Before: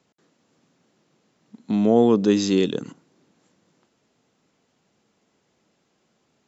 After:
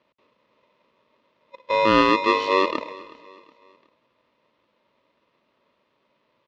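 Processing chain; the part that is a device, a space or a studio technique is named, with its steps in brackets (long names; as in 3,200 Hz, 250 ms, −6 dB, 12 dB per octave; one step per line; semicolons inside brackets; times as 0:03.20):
ring modulator pedal into a guitar cabinet (ring modulator with a square carrier 760 Hz; loudspeaker in its box 78–3,800 Hz, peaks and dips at 85 Hz −9 dB, 230 Hz +5 dB, 650 Hz +4 dB, 1,500 Hz −6 dB)
0:02.01–0:02.48: parametric band 610 Hz −10.5 dB 0.41 octaves
repeating echo 368 ms, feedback 40%, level −20.5 dB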